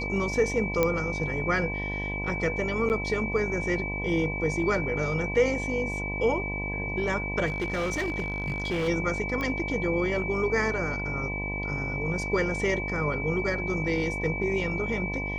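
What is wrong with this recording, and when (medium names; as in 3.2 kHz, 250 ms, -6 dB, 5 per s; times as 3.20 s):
buzz 50 Hz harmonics 21 -34 dBFS
whine 2.3 kHz -32 dBFS
0.83 s: pop -10 dBFS
2.89–2.90 s: dropout 9 ms
7.46–8.89 s: clipped -24.5 dBFS
9.41 s: pop -19 dBFS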